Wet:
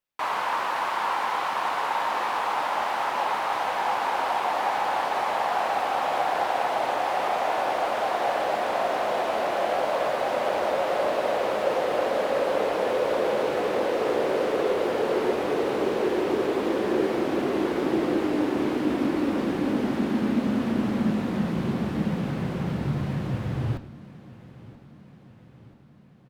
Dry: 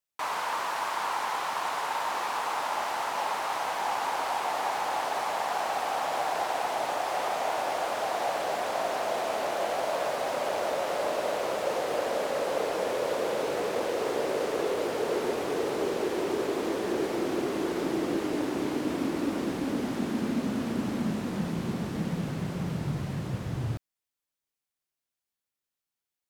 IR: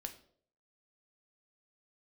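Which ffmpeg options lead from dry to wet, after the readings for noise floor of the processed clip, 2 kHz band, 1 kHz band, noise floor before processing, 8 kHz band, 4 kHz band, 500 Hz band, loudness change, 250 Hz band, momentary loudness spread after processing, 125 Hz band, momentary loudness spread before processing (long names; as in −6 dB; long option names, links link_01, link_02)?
−49 dBFS, +4.0 dB, +4.5 dB, below −85 dBFS, −4.0 dB, +1.5 dB, +4.5 dB, +4.5 dB, +5.0 dB, 3 LU, +4.0 dB, 3 LU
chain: -filter_complex "[0:a]aecho=1:1:982|1964|2946|3928|4910:0.106|0.0625|0.0369|0.0218|0.0128,asplit=2[link_01][link_02];[1:a]atrim=start_sample=2205,lowpass=4300[link_03];[link_02][link_03]afir=irnorm=-1:irlink=0,volume=6dB[link_04];[link_01][link_04]amix=inputs=2:normalize=0,volume=-3dB"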